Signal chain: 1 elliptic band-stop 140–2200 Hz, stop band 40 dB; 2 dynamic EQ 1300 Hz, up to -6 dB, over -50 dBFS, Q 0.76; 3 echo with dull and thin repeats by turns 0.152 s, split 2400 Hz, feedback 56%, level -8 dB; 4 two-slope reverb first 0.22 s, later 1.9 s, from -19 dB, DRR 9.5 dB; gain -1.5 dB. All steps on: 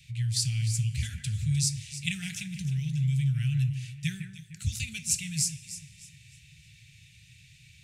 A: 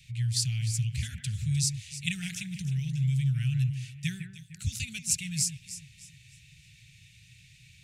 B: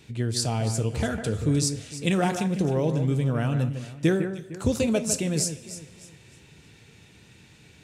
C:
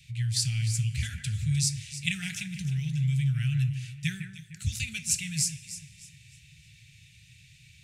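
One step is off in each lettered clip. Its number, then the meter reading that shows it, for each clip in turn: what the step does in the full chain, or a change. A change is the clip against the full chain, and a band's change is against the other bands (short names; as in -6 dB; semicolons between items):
4, echo-to-direct -5.5 dB to -8.0 dB; 1, 250 Hz band +10.0 dB; 2, 2 kHz band +3.0 dB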